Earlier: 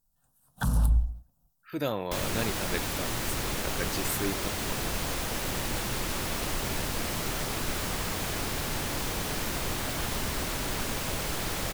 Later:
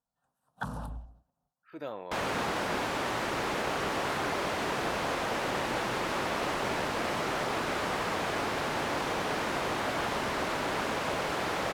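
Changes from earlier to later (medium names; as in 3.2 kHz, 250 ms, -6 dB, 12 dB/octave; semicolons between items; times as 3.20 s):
speech -6.5 dB; second sound +6.0 dB; master: add band-pass filter 830 Hz, Q 0.57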